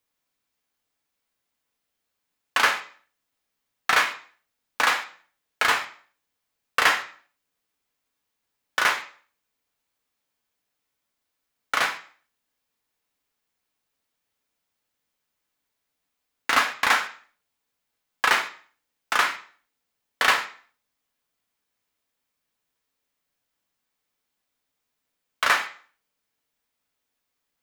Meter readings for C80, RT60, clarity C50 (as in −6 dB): 16.0 dB, 0.50 s, 11.5 dB